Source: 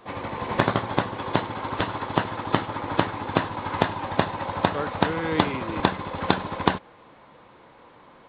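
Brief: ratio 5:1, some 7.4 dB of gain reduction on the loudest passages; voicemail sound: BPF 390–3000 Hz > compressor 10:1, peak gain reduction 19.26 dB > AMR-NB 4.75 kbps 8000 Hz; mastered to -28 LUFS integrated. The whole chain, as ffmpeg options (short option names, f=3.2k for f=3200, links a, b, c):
-af "acompressor=threshold=-25dB:ratio=5,highpass=390,lowpass=3k,acompressor=threshold=-42dB:ratio=10,volume=23.5dB" -ar 8000 -c:a libopencore_amrnb -b:a 4750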